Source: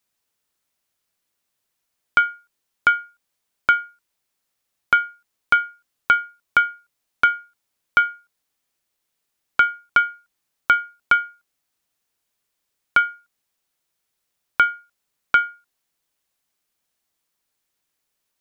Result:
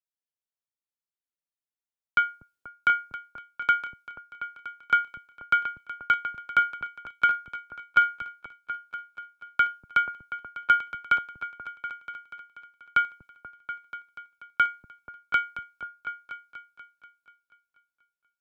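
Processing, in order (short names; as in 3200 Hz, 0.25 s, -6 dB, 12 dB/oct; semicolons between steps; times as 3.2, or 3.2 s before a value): on a send: repeats that get brighter 0.242 s, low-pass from 200 Hz, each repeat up 2 oct, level -3 dB; on the sum: three-band expander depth 40%; gain -8.5 dB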